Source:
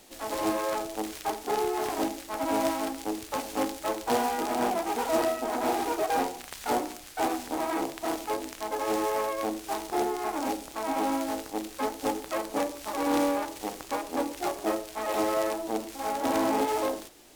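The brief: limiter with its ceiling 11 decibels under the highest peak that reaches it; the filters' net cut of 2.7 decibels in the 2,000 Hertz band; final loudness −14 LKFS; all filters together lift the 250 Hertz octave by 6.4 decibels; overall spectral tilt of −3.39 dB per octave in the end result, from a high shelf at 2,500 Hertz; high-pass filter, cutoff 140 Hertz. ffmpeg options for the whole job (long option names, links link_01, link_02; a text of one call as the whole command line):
ffmpeg -i in.wav -af "highpass=140,equalizer=frequency=250:width_type=o:gain=8.5,equalizer=frequency=2000:width_type=o:gain=-6,highshelf=frequency=2500:gain=5,volume=16.5dB,alimiter=limit=-3.5dB:level=0:latency=1" out.wav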